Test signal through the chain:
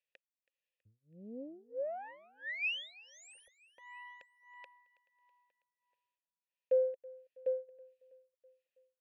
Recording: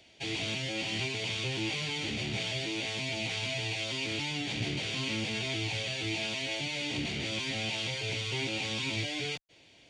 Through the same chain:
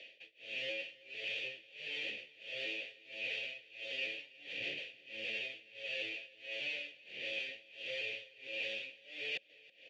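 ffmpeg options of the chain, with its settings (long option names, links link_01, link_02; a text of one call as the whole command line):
ffmpeg -i in.wav -filter_complex "[0:a]highshelf=frequency=1900:width_type=q:width=1.5:gain=9,areverse,acompressor=threshold=-35dB:ratio=6,areverse,aeval=exprs='(tanh(31.6*val(0)+0.4)-tanh(0.4))/31.6':channel_layout=same,adynamicsmooth=sensitivity=3:basefreq=6900,asplit=3[link_01][link_02][link_03];[link_01]bandpass=frequency=530:width_type=q:width=8,volume=0dB[link_04];[link_02]bandpass=frequency=1840:width_type=q:width=8,volume=-6dB[link_05];[link_03]bandpass=frequency=2480:width_type=q:width=8,volume=-9dB[link_06];[link_04][link_05][link_06]amix=inputs=3:normalize=0,tremolo=f=1.5:d=0.99,asplit=2[link_07][link_08];[link_08]aecho=0:1:325|650|975|1300:0.0794|0.0445|0.0249|0.0139[link_09];[link_07][link_09]amix=inputs=2:normalize=0,volume=14dB" out.wav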